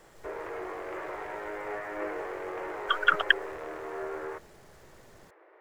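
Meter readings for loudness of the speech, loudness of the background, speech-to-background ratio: -26.5 LUFS, -37.5 LUFS, 11.0 dB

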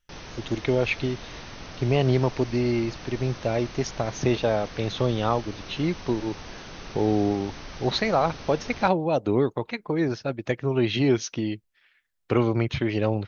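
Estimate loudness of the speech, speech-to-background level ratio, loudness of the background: -26.0 LUFS, 14.5 dB, -40.5 LUFS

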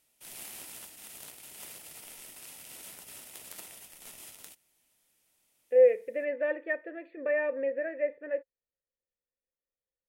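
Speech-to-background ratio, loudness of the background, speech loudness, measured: 16.0 dB, -45.0 LUFS, -29.0 LUFS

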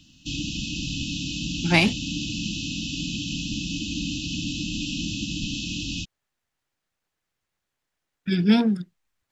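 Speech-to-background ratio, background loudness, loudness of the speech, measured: 7.0 dB, -29.0 LUFS, -22.0 LUFS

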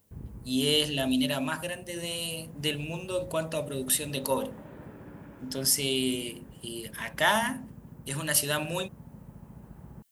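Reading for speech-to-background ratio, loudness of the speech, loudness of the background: 19.5 dB, -29.0 LUFS, -48.5 LUFS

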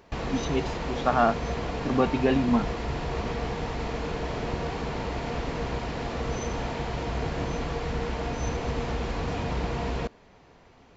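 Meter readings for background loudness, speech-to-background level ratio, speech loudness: -31.5 LUFS, 5.0 dB, -26.5 LUFS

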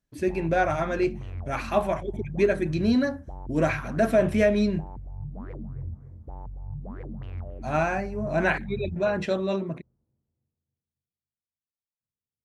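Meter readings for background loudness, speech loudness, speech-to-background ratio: -39.5 LUFS, -26.0 LUFS, 13.5 dB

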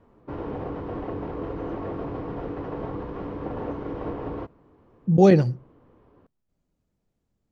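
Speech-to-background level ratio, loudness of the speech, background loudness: 15.0 dB, -18.5 LUFS, -33.5 LUFS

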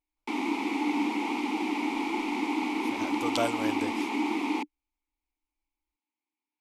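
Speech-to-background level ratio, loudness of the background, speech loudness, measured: -5.0 dB, -30.0 LUFS, -35.0 LUFS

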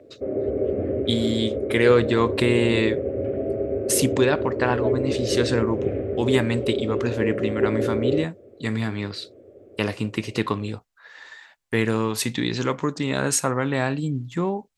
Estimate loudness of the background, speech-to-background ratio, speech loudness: -26.0 LUFS, 1.5 dB, -24.5 LUFS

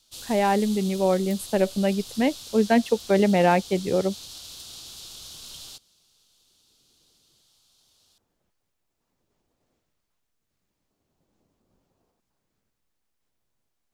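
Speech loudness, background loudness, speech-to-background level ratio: -23.0 LUFS, -39.0 LUFS, 16.0 dB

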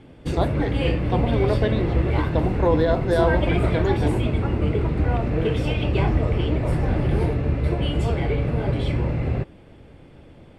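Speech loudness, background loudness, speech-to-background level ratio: -25.5 LUFS, -23.5 LUFS, -2.0 dB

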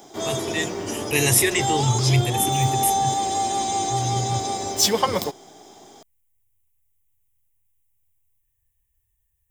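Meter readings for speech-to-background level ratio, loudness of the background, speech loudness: 0.5 dB, -23.5 LUFS, -23.0 LUFS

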